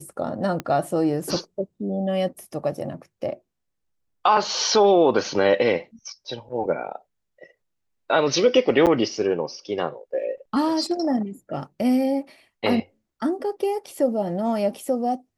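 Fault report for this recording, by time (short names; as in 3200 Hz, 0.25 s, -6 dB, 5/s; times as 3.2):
0.6 pop -14 dBFS
8.86–8.87 gap 7.9 ms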